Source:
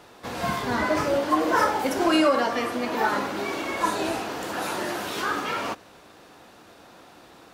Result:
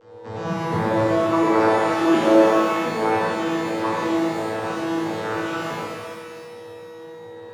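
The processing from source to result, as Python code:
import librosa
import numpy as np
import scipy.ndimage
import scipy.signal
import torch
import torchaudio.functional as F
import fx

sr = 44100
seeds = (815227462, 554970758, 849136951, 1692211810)

y = fx.vocoder_arp(x, sr, chord='bare fifth', root=45, every_ms=356)
y = y + 10.0 ** (-48.0 / 20.0) * np.sin(2.0 * np.pi * 480.0 * np.arange(len(y)) / sr)
y = fx.rev_shimmer(y, sr, seeds[0], rt60_s=1.8, semitones=12, shimmer_db=-8, drr_db=-6.5)
y = y * 10.0 ** (-3.0 / 20.0)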